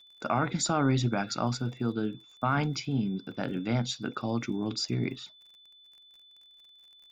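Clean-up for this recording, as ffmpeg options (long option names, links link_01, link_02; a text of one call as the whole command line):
ffmpeg -i in.wav -af "adeclick=threshold=4,bandreject=frequency=3500:width=30" out.wav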